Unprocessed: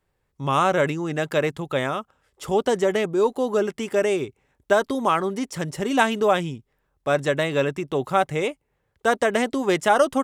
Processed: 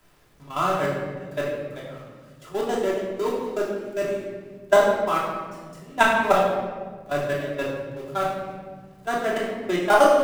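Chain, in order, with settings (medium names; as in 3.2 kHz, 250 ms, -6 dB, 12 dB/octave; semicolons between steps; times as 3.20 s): jump at every zero crossing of -23 dBFS; gate -15 dBFS, range -37 dB; level held to a coarse grid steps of 16 dB; simulated room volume 650 m³, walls mixed, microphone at 3 m; three bands compressed up and down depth 40%; trim +4 dB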